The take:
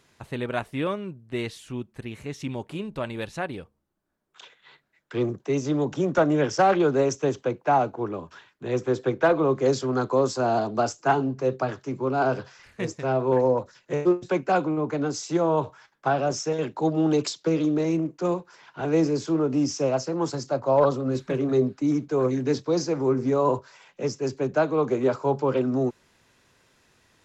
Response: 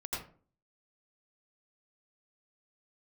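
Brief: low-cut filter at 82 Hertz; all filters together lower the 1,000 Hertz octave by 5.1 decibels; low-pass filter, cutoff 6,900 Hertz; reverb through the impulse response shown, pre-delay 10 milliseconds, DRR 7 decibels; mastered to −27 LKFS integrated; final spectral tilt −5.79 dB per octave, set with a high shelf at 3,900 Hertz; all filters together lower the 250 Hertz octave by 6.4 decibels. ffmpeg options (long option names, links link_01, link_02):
-filter_complex "[0:a]highpass=82,lowpass=6900,equalizer=frequency=250:width_type=o:gain=-8.5,equalizer=frequency=1000:width_type=o:gain=-6.5,highshelf=frequency=3900:gain=-3.5,asplit=2[link_01][link_02];[1:a]atrim=start_sample=2205,adelay=10[link_03];[link_02][link_03]afir=irnorm=-1:irlink=0,volume=-9dB[link_04];[link_01][link_04]amix=inputs=2:normalize=0,volume=1.5dB"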